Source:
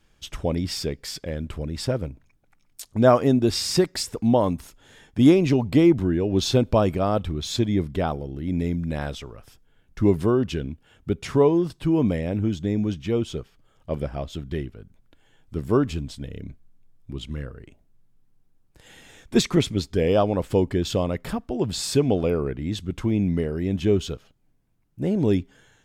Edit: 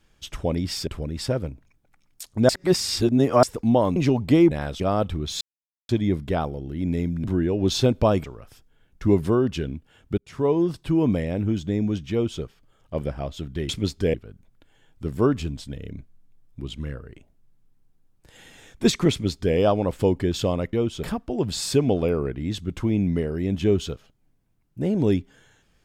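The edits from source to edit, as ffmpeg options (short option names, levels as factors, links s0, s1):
-filter_complex "[0:a]asplit=15[s0][s1][s2][s3][s4][s5][s6][s7][s8][s9][s10][s11][s12][s13][s14];[s0]atrim=end=0.872[s15];[s1]atrim=start=1.458:end=3.082[s16];[s2]atrim=start=3.078:end=4.022,asetpts=PTS-STARTPTS,areverse[s17];[s3]atrim=start=4.018:end=4.552[s18];[s4]atrim=start=5.398:end=5.952[s19];[s5]atrim=start=8.908:end=9.202[s20];[s6]atrim=start=6.948:end=7.56,asetpts=PTS-STARTPTS,afade=t=out:st=0.608:d=0.004:c=hsin,apad=pad_dur=0.48[s21];[s7]atrim=start=7.56:end=8.912,asetpts=PTS-STARTPTS,afade=t=in:d=0.004:c=hsin[s22];[s8]atrim=start=5.948:end=6.952[s23];[s9]atrim=start=9.198:end=11.14,asetpts=PTS-STARTPTS,afade=t=out:st=1.938:d=0.004:c=hsin[s24];[s10]atrim=start=11.14:end=14.652,asetpts=PTS-STARTPTS,afade=t=in:d=0.46[s25];[s11]atrim=start=19.618:end=20.072[s26];[s12]atrim=start=14.648:end=21.242[s27];[s13]atrim=start=13.078:end=13.382[s28];[s14]atrim=start=21.238[s29];[s15][s16]acrossfade=d=0.004:c1=hsin:c2=hsin[s30];[s30][s17]acrossfade=d=0.004:c1=hsin:c2=hsin[s31];[s31][s18]acrossfade=d=0.004:c1=hsin:c2=hsin[s32];[s32][s19]acrossfade=d=0.004:c1=hsin:c2=hsin[s33];[s33][s20]acrossfade=d=0.004:c1=hsin:c2=hsin[s34];[s21][s22]concat=n=2:v=0:a=1[s35];[s34][s35]acrossfade=d=0.004:c1=hsin:c2=hsin[s36];[s36][s23]acrossfade=d=0.004:c1=hsin:c2=hsin[s37];[s24][s25]concat=n=2:v=0:a=1[s38];[s37][s38]acrossfade=d=0.004:c1=hsin:c2=hsin[s39];[s39][s26]acrossfade=d=0.004:c1=hsin:c2=hsin[s40];[s40][s27]acrossfade=d=0.004:c1=hsin:c2=hsin[s41];[s41][s28]acrossfade=d=0.004:c1=hsin:c2=hsin[s42];[s42][s29]acrossfade=d=0.004:c1=hsin:c2=hsin"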